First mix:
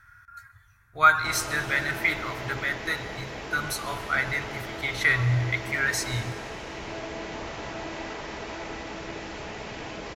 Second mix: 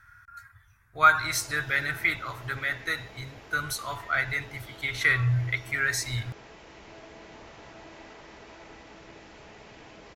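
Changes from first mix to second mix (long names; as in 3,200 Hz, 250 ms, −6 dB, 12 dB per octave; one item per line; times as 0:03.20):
background −11.0 dB
reverb: off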